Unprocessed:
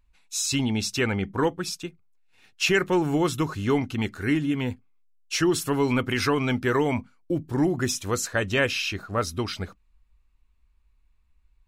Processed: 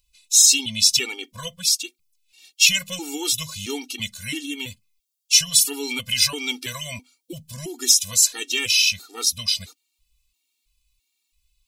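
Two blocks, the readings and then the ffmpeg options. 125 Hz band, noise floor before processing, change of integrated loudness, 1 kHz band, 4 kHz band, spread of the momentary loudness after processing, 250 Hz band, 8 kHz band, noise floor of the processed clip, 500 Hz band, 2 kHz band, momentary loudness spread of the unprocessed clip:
-10.5 dB, -64 dBFS, +7.0 dB, -11.0 dB, +12.5 dB, 18 LU, -10.0 dB, +15.0 dB, -75 dBFS, -11.5 dB, +1.5 dB, 9 LU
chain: -af "aexciter=amount=12.5:drive=6.4:freq=2500,afftfilt=real='re*gt(sin(2*PI*1.5*pts/sr)*(1-2*mod(floor(b*sr/1024/240),2)),0)':imag='im*gt(sin(2*PI*1.5*pts/sr)*(1-2*mod(floor(b*sr/1024/240),2)),0)':win_size=1024:overlap=0.75,volume=0.447"

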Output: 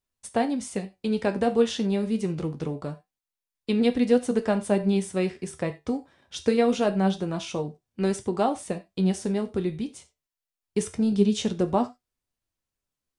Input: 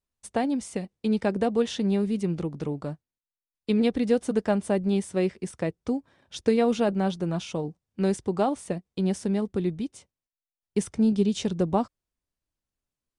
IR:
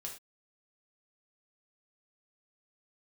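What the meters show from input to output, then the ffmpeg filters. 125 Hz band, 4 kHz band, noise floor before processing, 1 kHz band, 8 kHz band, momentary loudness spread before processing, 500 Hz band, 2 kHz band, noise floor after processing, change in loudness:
0.0 dB, +2.5 dB, under -85 dBFS, +1.5 dB, +2.5 dB, 10 LU, +1.0 dB, +2.0 dB, under -85 dBFS, +0.5 dB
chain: -filter_complex "[0:a]asplit=2[s0][s1];[s1]lowshelf=f=440:g=-10[s2];[1:a]atrim=start_sample=2205,afade=t=out:st=0.15:d=0.01,atrim=end_sample=7056[s3];[s2][s3]afir=irnorm=-1:irlink=0,volume=0.891[s4];[s0][s4]amix=inputs=2:normalize=0,flanger=delay=8.1:depth=5.4:regen=65:speed=0.25:shape=sinusoidal,volume=1.41"

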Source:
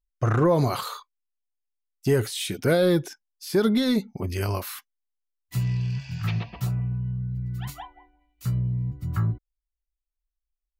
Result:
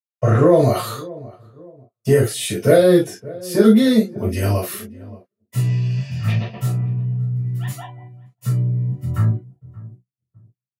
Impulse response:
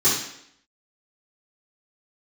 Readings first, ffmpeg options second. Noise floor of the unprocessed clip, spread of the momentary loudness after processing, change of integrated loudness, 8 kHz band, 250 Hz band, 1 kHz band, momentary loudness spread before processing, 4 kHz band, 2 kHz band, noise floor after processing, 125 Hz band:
-85 dBFS, 17 LU, +7.5 dB, +7.5 dB, +8.0 dB, +4.5 dB, 16 LU, +3.5 dB, +4.0 dB, under -85 dBFS, +7.0 dB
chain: -filter_complex "[0:a]asplit=2[s0][s1];[s1]adelay=575,lowpass=f=1000:p=1,volume=0.112,asplit=2[s2][s3];[s3]adelay=575,lowpass=f=1000:p=1,volume=0.43,asplit=2[s4][s5];[s5]adelay=575,lowpass=f=1000:p=1,volume=0.43[s6];[s0][s2][s4][s6]amix=inputs=4:normalize=0,agate=range=0.0126:threshold=0.00447:ratio=16:detection=peak[s7];[1:a]atrim=start_sample=2205,afade=t=out:st=0.16:d=0.01,atrim=end_sample=7497,asetrate=70560,aresample=44100[s8];[s7][s8]afir=irnorm=-1:irlink=0,volume=0.447"

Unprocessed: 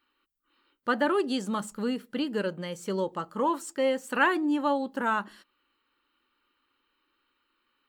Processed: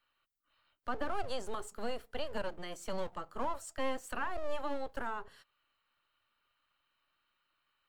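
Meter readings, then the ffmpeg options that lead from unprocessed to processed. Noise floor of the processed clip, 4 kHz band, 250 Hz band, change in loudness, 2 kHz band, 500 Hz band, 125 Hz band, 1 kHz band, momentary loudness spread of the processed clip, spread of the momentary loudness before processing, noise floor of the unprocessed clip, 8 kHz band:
-81 dBFS, -8.5 dB, -16.5 dB, -11.0 dB, -13.0 dB, -10.0 dB, -10.0 dB, -9.5 dB, 5 LU, 8 LU, -77 dBFS, -6.5 dB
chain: -filter_complex "[0:a]acrossover=split=570|840[s0][s1][s2];[s0]aeval=exprs='abs(val(0))':c=same[s3];[s2]acompressor=threshold=0.0126:ratio=6[s4];[s3][s1][s4]amix=inputs=3:normalize=0,volume=0.596"

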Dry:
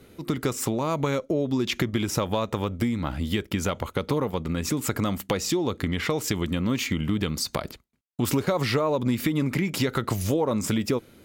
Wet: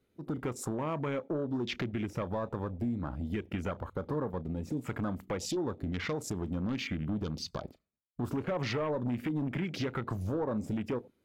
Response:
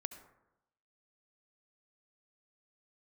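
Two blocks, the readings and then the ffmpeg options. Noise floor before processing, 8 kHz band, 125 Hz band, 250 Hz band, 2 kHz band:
-54 dBFS, -14.0 dB, -8.0 dB, -8.0 dB, -9.5 dB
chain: -filter_complex "[0:a]asoftclip=type=hard:threshold=0.0891,asplit=2[s0][s1];[1:a]atrim=start_sample=2205,asetrate=74970,aresample=44100,adelay=33[s2];[s1][s2]afir=irnorm=-1:irlink=0,volume=0.422[s3];[s0][s3]amix=inputs=2:normalize=0,afwtdn=0.0158,highshelf=f=7100:g=-4,volume=0.447"

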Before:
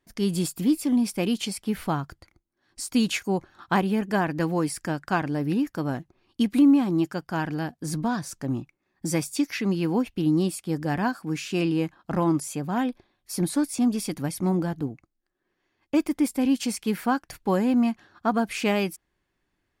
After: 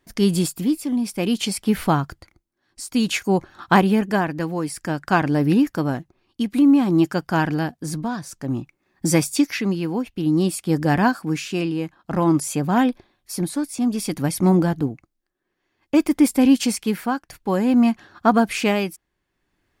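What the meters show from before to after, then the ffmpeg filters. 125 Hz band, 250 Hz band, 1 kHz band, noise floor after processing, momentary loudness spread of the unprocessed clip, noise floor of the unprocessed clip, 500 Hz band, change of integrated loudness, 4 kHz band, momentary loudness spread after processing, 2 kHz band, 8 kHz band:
+5.5 dB, +4.5 dB, +6.0 dB, -76 dBFS, 8 LU, -77 dBFS, +5.0 dB, +5.0 dB, +4.5 dB, 11 LU, +5.5 dB, +5.0 dB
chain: -af "tremolo=f=0.55:d=0.62,volume=2.51"

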